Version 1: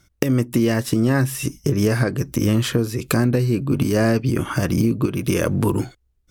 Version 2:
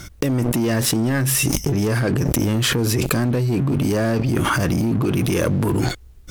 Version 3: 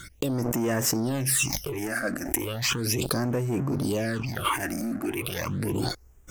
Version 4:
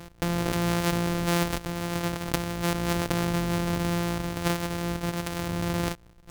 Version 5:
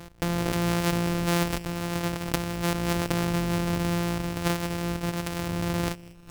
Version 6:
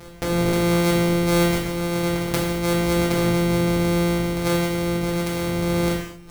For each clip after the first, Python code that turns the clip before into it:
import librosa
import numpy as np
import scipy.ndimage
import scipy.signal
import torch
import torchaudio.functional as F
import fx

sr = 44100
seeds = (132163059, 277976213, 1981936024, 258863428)

y1 = fx.leveller(x, sr, passes=3)
y1 = fx.env_flatten(y1, sr, amount_pct=100)
y1 = y1 * librosa.db_to_amplitude(-12.5)
y2 = fx.low_shelf(y1, sr, hz=380.0, db=-10.5)
y2 = fx.phaser_stages(y2, sr, stages=8, low_hz=120.0, high_hz=4200.0, hz=0.36, feedback_pct=25)
y2 = y2 * librosa.db_to_amplitude(-1.0)
y3 = np.r_[np.sort(y2[:len(y2) // 256 * 256].reshape(-1, 256), axis=1).ravel(), y2[len(y2) // 256 * 256:]]
y4 = fx.echo_feedback(y3, sr, ms=197, feedback_pct=48, wet_db=-22)
y5 = fx.rev_gated(y4, sr, seeds[0], gate_ms=260, shape='falling', drr_db=-3.5)